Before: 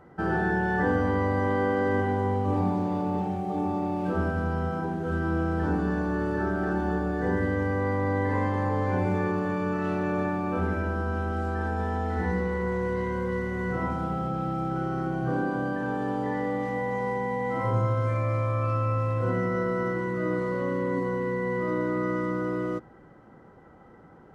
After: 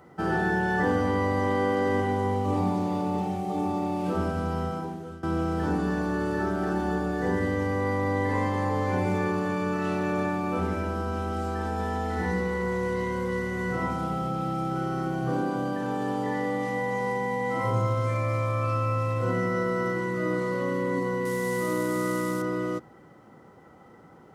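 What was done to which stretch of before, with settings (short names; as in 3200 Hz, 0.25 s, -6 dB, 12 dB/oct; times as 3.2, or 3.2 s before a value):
4.62–5.23 fade out, to -18.5 dB
21.25–22.42 CVSD 64 kbps
whole clip: HPF 80 Hz; high shelf 3200 Hz +11.5 dB; notch 1600 Hz, Q 9.3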